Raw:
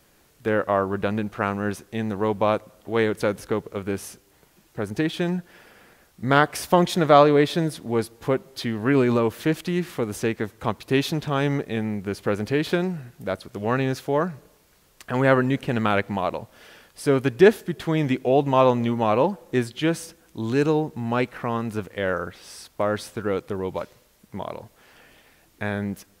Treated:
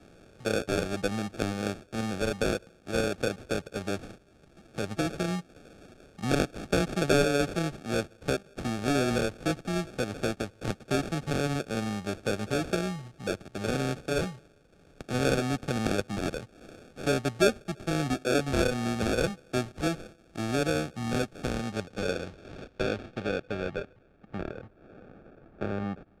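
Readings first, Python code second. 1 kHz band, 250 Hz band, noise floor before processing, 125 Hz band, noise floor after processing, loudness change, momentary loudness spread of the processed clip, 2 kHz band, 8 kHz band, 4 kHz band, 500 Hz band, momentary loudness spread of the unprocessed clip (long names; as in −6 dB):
−10.5 dB, −6.5 dB, −59 dBFS, −5.5 dB, −59 dBFS, −7.0 dB, 10 LU, −5.0 dB, +0.5 dB, −2.5 dB, −7.5 dB, 12 LU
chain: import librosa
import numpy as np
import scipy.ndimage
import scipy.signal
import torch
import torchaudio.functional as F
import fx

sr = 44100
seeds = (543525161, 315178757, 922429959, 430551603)

y = fx.sample_hold(x, sr, seeds[0], rate_hz=1000.0, jitter_pct=0)
y = fx.filter_sweep_lowpass(y, sr, from_hz=8800.0, to_hz=1500.0, start_s=21.42, end_s=24.69, q=0.83)
y = fx.band_squash(y, sr, depth_pct=40)
y = y * librosa.db_to_amplitude(-6.5)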